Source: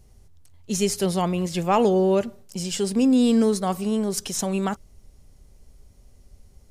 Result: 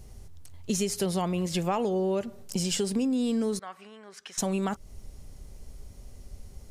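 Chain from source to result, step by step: compression 6:1, threshold -32 dBFS, peak gain reduction 16 dB; 3.59–4.38 s: band-pass filter 1.7 kHz, Q 2.1; trim +6 dB

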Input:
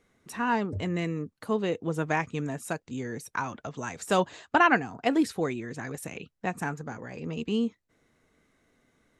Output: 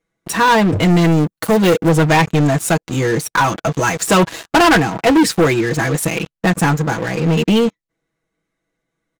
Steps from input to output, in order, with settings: comb 6.1 ms, depth 78%; waveshaping leveller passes 5; 1.12–1.89 s: treble shelf 9.2 kHz +12 dB

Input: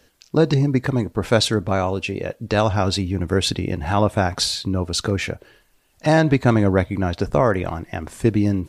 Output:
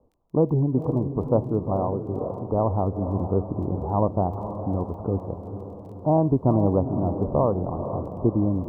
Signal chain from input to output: steep low-pass 1.1 kHz 72 dB/octave; crackle 15 per s -41 dBFS; on a send: echo that smears into a reverb 481 ms, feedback 52%, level -9 dB; on the sum: trim -4 dB

